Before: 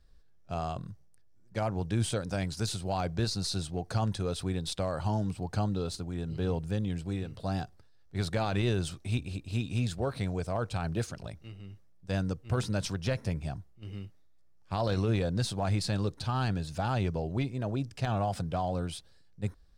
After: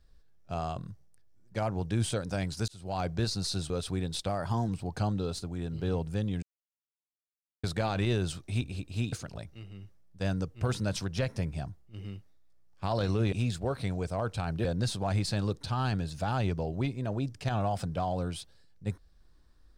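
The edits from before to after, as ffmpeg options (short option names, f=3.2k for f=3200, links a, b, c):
-filter_complex "[0:a]asplit=10[a][b][c][d][e][f][g][h][i][j];[a]atrim=end=2.68,asetpts=PTS-STARTPTS,afade=t=out:st=2.676:d=0.004:c=hsin[k];[b]atrim=start=2.68:end=3.702,asetpts=PTS-STARTPTS,afade=t=in:d=0.34[l];[c]atrim=start=4.228:end=4.824[m];[d]atrim=start=4.82:end=5.25,asetpts=PTS-STARTPTS,asetrate=48069,aresample=44100,atrim=end_sample=17397,asetpts=PTS-STARTPTS[n];[e]atrim=start=5.246:end=6.99,asetpts=PTS-STARTPTS,afade=t=out:st=1.74:d=0.004:c=hsin[o];[f]atrim=start=6.99:end=8.2,asetpts=PTS-STARTPTS,volume=0[p];[g]atrim=start=8.2:end=9.692,asetpts=PTS-STARTPTS,afade=t=in:d=0.004:c=hsin[q];[h]atrim=start=11.008:end=15.212[r];[i]atrim=start=9.688:end=11.012[s];[j]atrim=start=15.208[t];[k][l]concat=n=2:v=0:a=1[u];[u][m]acrossfade=d=0.004:c1=hsin:c2=hsin[v];[v][n]acrossfade=d=0.004:c1=hsin:c2=hsin[w];[o][p][q]concat=n=3:v=0:a=1[x];[w][x]acrossfade=d=0.004:c1=hsin:c2=hsin[y];[y][r]acrossfade=d=0.004:c1=hsin:c2=hsin[z];[z][s]acrossfade=d=0.004:c1=hsin:c2=hsin[aa];[aa][t]acrossfade=d=0.004:c1=hsin:c2=hsin"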